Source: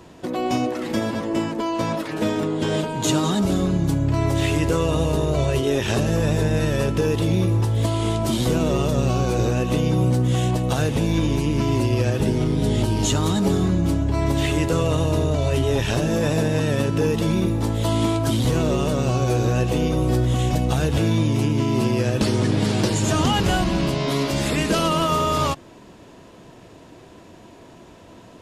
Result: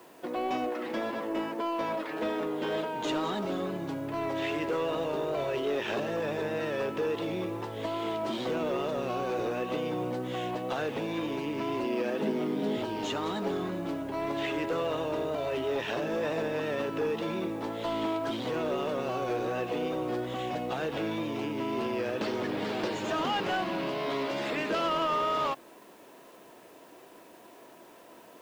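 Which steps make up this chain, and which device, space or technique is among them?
tape answering machine (band-pass filter 370–2,900 Hz; soft clipping −18.5 dBFS, distortion −19 dB; tape wow and flutter 26 cents; white noise bed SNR 31 dB)
0:11.84–0:12.77: low shelf with overshoot 130 Hz −14 dB, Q 3
level −4 dB

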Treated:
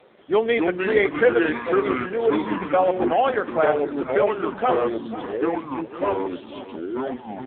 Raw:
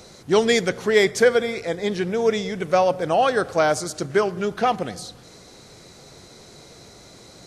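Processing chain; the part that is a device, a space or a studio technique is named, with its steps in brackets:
0:00.55–0:01.47: low-pass filter 5,300 Hz 12 dB per octave
delay with pitch and tempo change per echo 182 ms, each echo −4 semitones, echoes 3
satellite phone (band-pass filter 320–3,400 Hz; single-tap delay 498 ms −14.5 dB; AMR narrowband 5.9 kbit/s 8,000 Hz)

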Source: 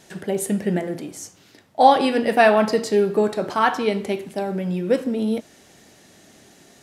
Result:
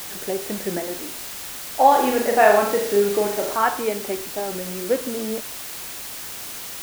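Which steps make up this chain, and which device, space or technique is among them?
wax cylinder (band-pass filter 300–2,100 Hz; tape wow and flutter; white noise bed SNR 10 dB)
0:01.88–0:03.56: flutter between parallel walls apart 6.8 metres, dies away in 0.54 s
level −1 dB

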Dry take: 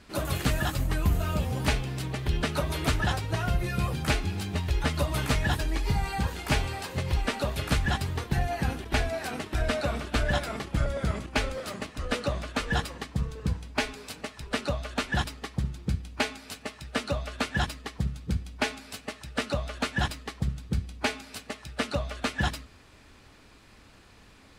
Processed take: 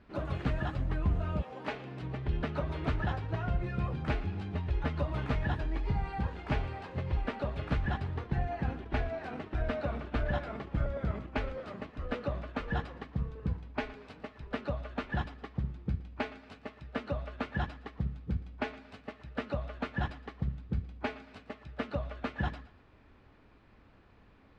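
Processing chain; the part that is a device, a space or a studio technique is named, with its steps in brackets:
0:01.41–0:02.01: high-pass filter 600 Hz → 150 Hz 12 dB per octave
phone in a pocket (low-pass filter 3,400 Hz 12 dB per octave; high-shelf EQ 2,300 Hz −11 dB)
feedback echo with a high-pass in the loop 116 ms, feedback 33%, level −17 dB
level −4.5 dB

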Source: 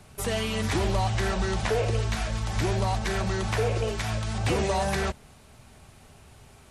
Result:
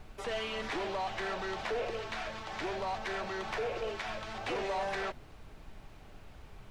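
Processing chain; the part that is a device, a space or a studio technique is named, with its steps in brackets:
aircraft cabin announcement (band-pass filter 390–3,600 Hz; soft clipping −26 dBFS, distortion −15 dB; brown noise bed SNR 11 dB)
level −3 dB

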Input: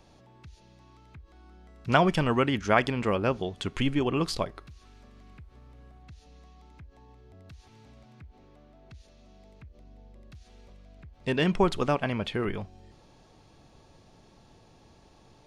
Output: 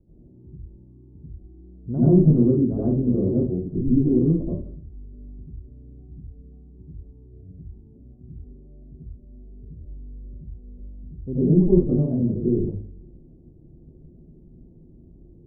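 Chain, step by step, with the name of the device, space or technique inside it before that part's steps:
next room (low-pass filter 360 Hz 24 dB per octave; convolution reverb RT60 0.45 s, pre-delay 74 ms, DRR −8.5 dB)
0:02.17–0:02.66: high-shelf EQ 2,400 Hz +10 dB

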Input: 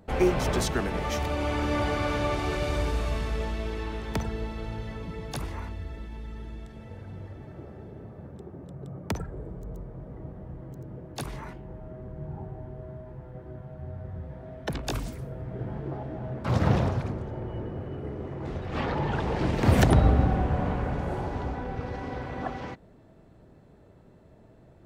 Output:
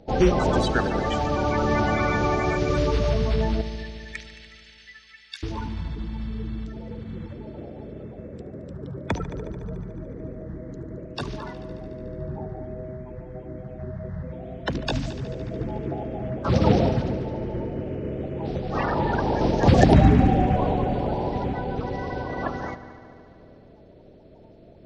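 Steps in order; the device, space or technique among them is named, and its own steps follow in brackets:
clip after many re-uploads (low-pass filter 6,200 Hz 24 dB per octave; spectral magnitudes quantised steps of 30 dB)
0:03.61–0:05.43: Chebyshev high-pass filter 1,800 Hz, order 4
echo machine with several playback heads 73 ms, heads all three, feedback 64%, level −20 dB
level +5 dB

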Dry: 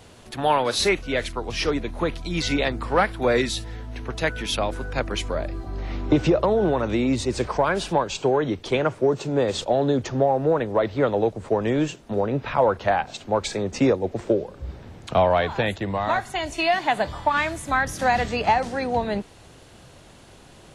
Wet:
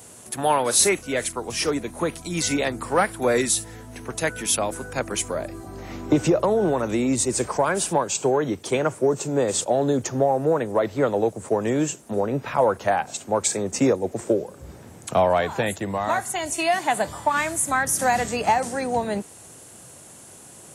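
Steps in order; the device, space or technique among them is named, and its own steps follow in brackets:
budget condenser microphone (high-pass filter 110 Hz 12 dB per octave; high shelf with overshoot 5,900 Hz +13.5 dB, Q 1.5)

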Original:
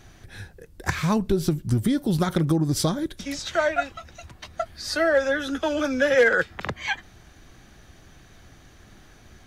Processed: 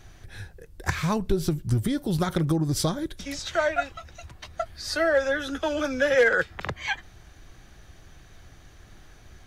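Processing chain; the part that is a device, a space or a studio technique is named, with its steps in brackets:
low shelf boost with a cut just above (low-shelf EQ 70 Hz +6 dB; parametric band 230 Hz −4.5 dB 0.76 octaves)
level −1.5 dB

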